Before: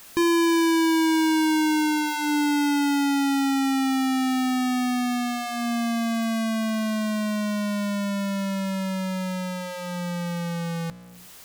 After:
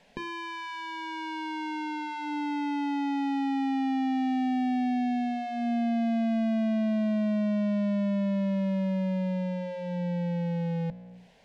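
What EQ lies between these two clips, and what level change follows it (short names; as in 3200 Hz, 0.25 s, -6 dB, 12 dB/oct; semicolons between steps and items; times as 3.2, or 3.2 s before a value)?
LPF 1800 Hz 12 dB/oct; fixed phaser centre 330 Hz, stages 6; 0.0 dB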